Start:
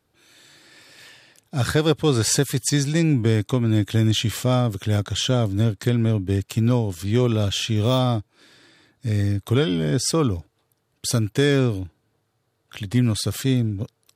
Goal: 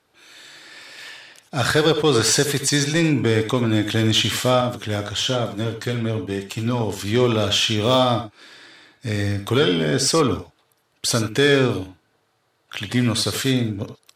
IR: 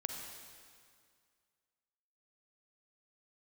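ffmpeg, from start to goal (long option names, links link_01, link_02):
-filter_complex "[0:a]asplit=2[link_01][link_02];[link_02]highpass=frequency=720:poles=1,volume=14dB,asoftclip=type=tanh:threshold=-5.5dB[link_03];[link_01][link_03]amix=inputs=2:normalize=0,lowpass=frequency=4500:poles=1,volume=-6dB,asettb=1/sr,asplit=3[link_04][link_05][link_06];[link_04]atrim=end=4.614[link_07];[link_05]atrim=start=4.61:end=6.81,asetpts=PTS-STARTPTS,afade=type=in:duration=0.004:curve=qsin,afade=type=out:start_time=2.196:duration=0.004:curve=qsin,flanger=delay=5.2:depth=4.9:regen=-41:speed=1.1:shape=sinusoidal[link_08];[link_06]atrim=start=6.806[link_09];[link_07][link_08]acrossfade=duration=0.004:curve1=hsin:curve2=qsin[link_10];[link_10][link_09]acrossfade=duration=0.004:curve1=qsin:curve2=hsin[link_11];[1:a]atrim=start_sample=2205,atrim=end_sample=3087,asetrate=30429,aresample=44100[link_12];[link_11][link_12]afir=irnorm=-1:irlink=0"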